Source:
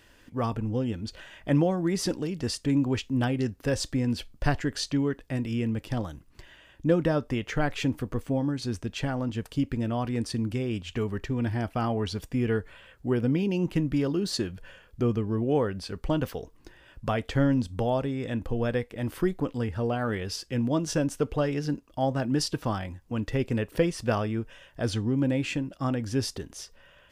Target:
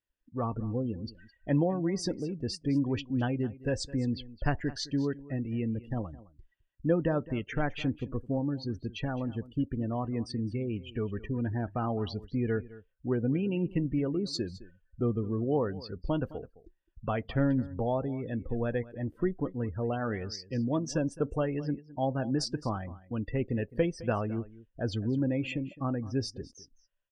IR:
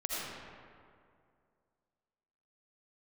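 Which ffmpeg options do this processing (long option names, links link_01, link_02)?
-filter_complex "[0:a]afftdn=noise_reduction=33:noise_floor=-36,asplit=2[link_01][link_02];[link_02]aecho=0:1:212:0.119[link_03];[link_01][link_03]amix=inputs=2:normalize=0,volume=-3.5dB"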